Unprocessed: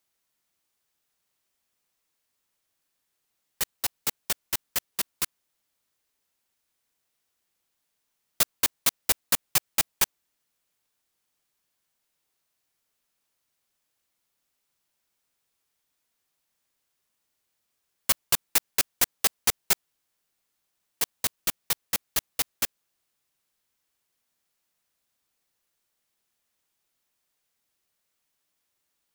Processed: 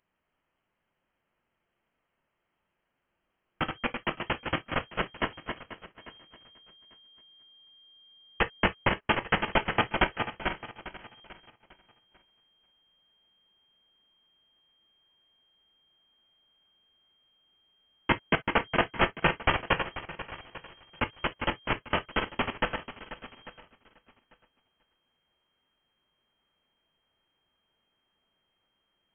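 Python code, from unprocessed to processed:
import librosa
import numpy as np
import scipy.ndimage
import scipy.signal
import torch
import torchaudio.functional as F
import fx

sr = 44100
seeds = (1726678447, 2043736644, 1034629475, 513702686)

p1 = fx.reverse_delay_fb(x, sr, ms=244, feedback_pct=40, wet_db=-6.0)
p2 = fx.high_shelf(p1, sr, hz=2100.0, db=10.5)
p3 = p2 + fx.echo_feedback(p2, sr, ms=845, feedback_pct=23, wet_db=-18, dry=0)
p4 = fx.rev_gated(p3, sr, seeds[0], gate_ms=80, shape='falling', drr_db=9.5)
p5 = fx.backlash(p4, sr, play_db=-25.0)
p6 = p4 + (p5 * librosa.db_to_amplitude(-12.0))
y = fx.freq_invert(p6, sr, carrier_hz=3200)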